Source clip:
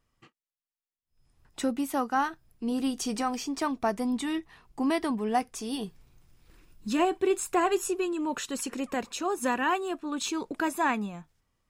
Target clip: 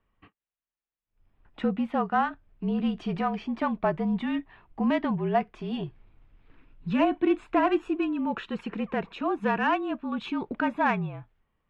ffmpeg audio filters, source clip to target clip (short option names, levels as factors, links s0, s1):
-af "afreqshift=-41,highshelf=f=4400:t=q:w=1.5:g=-12,adynamicsmooth=sensitivity=0.5:basefreq=2800,volume=1.26"